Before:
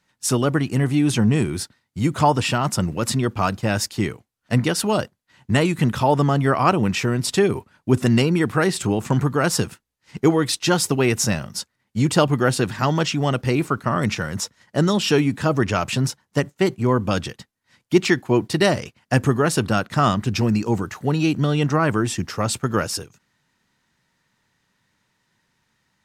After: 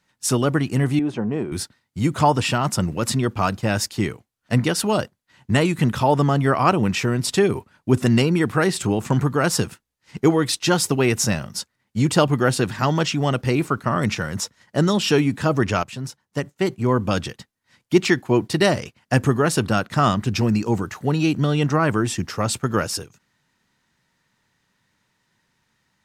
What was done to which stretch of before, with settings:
0:00.99–0:01.52: resonant band-pass 550 Hz, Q 0.87
0:15.83–0:16.99: fade in, from −13.5 dB

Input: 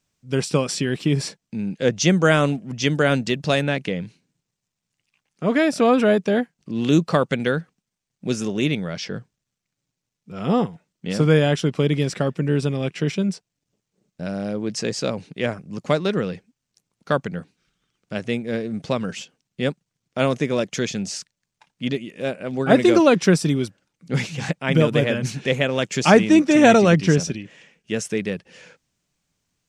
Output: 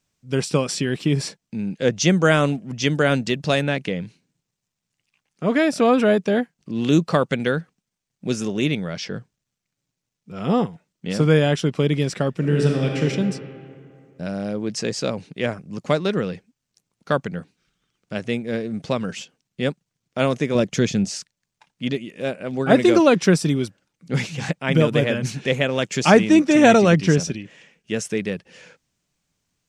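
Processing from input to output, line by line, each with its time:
0:12.31–0:13.02: thrown reverb, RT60 2.4 s, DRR −0.5 dB
0:20.55–0:21.05: low-shelf EQ 340 Hz +9 dB

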